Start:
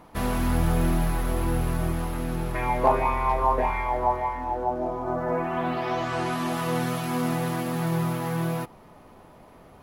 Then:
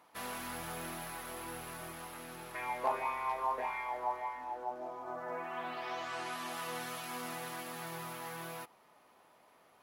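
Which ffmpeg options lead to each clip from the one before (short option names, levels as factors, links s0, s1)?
-af "highpass=f=1300:p=1,volume=0.473"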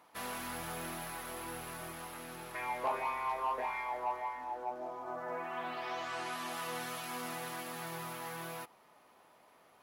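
-af "asoftclip=type=tanh:threshold=0.0473,volume=1.12"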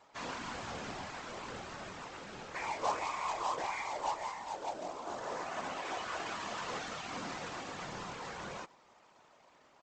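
-af "aresample=16000,acrusher=bits=2:mode=log:mix=0:aa=0.000001,aresample=44100,afftfilt=real='hypot(re,im)*cos(2*PI*random(0))':imag='hypot(re,im)*sin(2*PI*random(1))':win_size=512:overlap=0.75,volume=1.88"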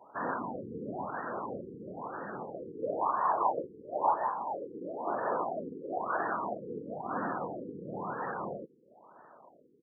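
-af "highpass=170,lowpass=5300,afftfilt=real='re*lt(b*sr/1024,480*pow(1900/480,0.5+0.5*sin(2*PI*1*pts/sr)))':imag='im*lt(b*sr/1024,480*pow(1900/480,0.5+0.5*sin(2*PI*1*pts/sr)))':win_size=1024:overlap=0.75,volume=2.66"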